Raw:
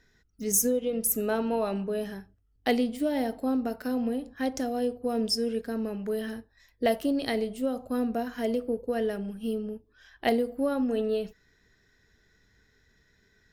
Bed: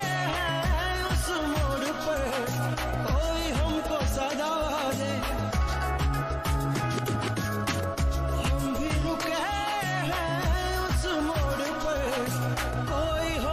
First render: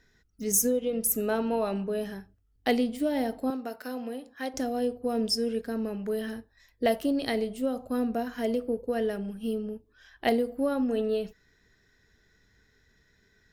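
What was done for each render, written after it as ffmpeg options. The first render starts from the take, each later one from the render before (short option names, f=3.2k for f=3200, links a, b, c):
-filter_complex "[0:a]asettb=1/sr,asplit=3[a][b][c];[a]atrim=end=3.504[d];[b]atrim=start=3.5:end=4.54,asetpts=PTS-STARTPTS,afade=t=in:d=0.004:c=qsin,afade=t=out:st=1.036:d=0.004:c=qsin,highpass=f=590:p=1[e];[c]atrim=start=4.536[f];[d][e]acrossfade=d=0.004:c1=hsin:c2=qsin[g];[g][f]acrossfade=d=0.004:c1=qsin:c2=hsin"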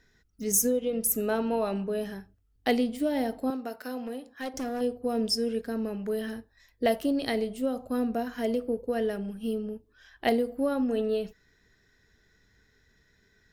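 -filter_complex "[0:a]asettb=1/sr,asplit=3[a][b][c];[a]atrim=end=4.014[d];[b]atrim=start=4.01:end=4.81,asetpts=PTS-STARTPTS,afade=t=in:d=0.004:c=qsin,afade=t=out:st=0.796:d=0.004:c=qsin,volume=29dB,asoftclip=hard,volume=-29dB[e];[c]atrim=start=4.806[f];[d][e]acrossfade=d=0.004:c1=hsin:c2=qsin[g];[g][f]acrossfade=d=0.004:c1=qsin:c2=hsin"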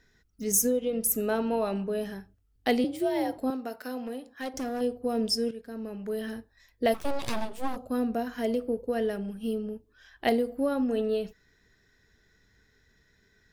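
-filter_complex "[0:a]asettb=1/sr,asplit=3[a][b][c];[a]atrim=end=2.844[d];[b]atrim=start=2.84:end=3.38,asetpts=PTS-STARTPTS,afade=t=in:d=0.004:c=qsin,afade=t=out:st=0.536:d=0.004:c=qsin,afreqshift=59[e];[c]atrim=start=3.376[f];[d][e]acrossfade=d=0.004:c1=hsin:c2=qsin[g];[g][f]acrossfade=d=0.004:c1=qsin:c2=hsin,asplit=3[h][i][j];[h]afade=t=out:st=6.93:d=0.02[k];[i]aeval=exprs='abs(val(0))':c=same,afade=t=in:st=6.93:d=0.02,afade=t=out:st=7.75:d=0.02[l];[j]afade=t=in:st=7.75:d=0.02[m];[k][l][m]amix=inputs=3:normalize=0,asplit=2[n][o];[n]atrim=end=5.51,asetpts=PTS-STARTPTS,afade=t=out:st=5.506:d=0.004:c=hsin:silence=0.237137[p];[o]atrim=start=5.51,asetpts=PTS-STARTPTS,afade=t=in:d=0.85:silence=0.237137[q];[p][q]concat=n=2:v=0:a=1"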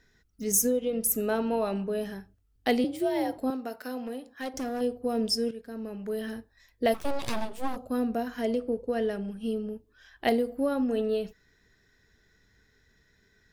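-filter_complex "[0:a]asettb=1/sr,asplit=3[a][b][c];[a]atrim=end=8.414[d];[b]atrim=start=8.41:end=9.56,asetpts=PTS-STARTPTS,afade=t=in:d=0.004:c=qsin,afade=t=out:st=1.146:d=0.004:c=qsin,lowpass=9.7k[e];[c]atrim=start=9.556[f];[d][e]acrossfade=d=0.004:c1=hsin:c2=qsin[g];[g][f]acrossfade=d=0.004:c1=qsin:c2=hsin"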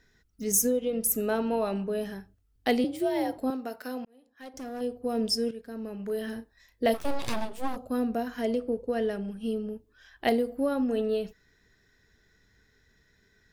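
-filter_complex "[0:a]asettb=1/sr,asplit=3[a][b][c];[a]atrim=end=5.964[d];[b]atrim=start=5.96:end=7.34,asetpts=PTS-STARTPTS,afade=t=in:d=0.004:c=qsin,afade=t=out:st=1.376:d=0.004:c=qsin,asplit=2[e][f];[f]adelay=35,volume=-11dB[g];[e][g]amix=inputs=2:normalize=0,atrim=end_sample=60858[h];[c]atrim=start=7.336[i];[d][h]acrossfade=d=0.004:c1=hsin:c2=qsin[j];[j][i]acrossfade=d=0.004:c1=qsin:c2=hsin,asplit=2[k][l];[k]atrim=end=4.05,asetpts=PTS-STARTPTS,afade=t=out:st=4.046:d=0.004:c=hsin[m];[l]atrim=start=4.05,asetpts=PTS-STARTPTS,afade=t=in:d=1.17[n];[m][n]concat=n=2:v=0:a=1"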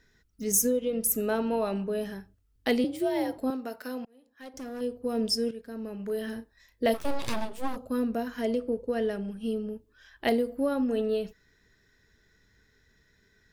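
-af "bandreject=f=740:w=12"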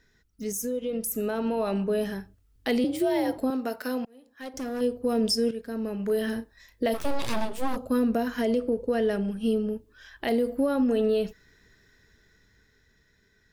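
-af "alimiter=limit=-23dB:level=0:latency=1:release=70,dynaudnorm=f=190:g=17:m=6dB"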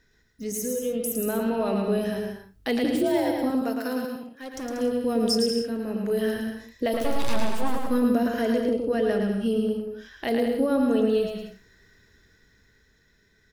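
-af "aecho=1:1:110|187|240.9|278.6|305:0.631|0.398|0.251|0.158|0.1"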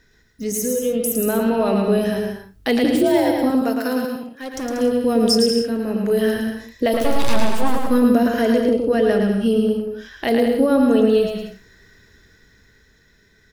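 -af "volume=7dB"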